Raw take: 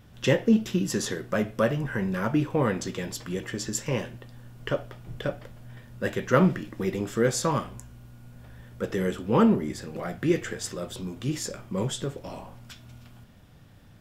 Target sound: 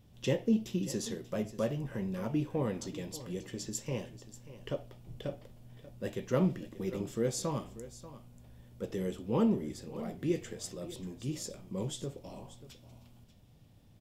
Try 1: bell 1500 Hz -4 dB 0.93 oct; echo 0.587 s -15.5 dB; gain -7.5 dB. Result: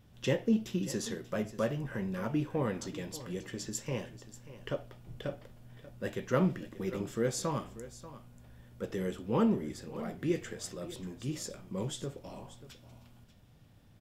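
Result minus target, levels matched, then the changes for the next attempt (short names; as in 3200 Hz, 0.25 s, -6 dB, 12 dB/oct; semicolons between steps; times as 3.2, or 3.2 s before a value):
2000 Hz band +4.5 dB
change: bell 1500 Hz -11.5 dB 0.93 oct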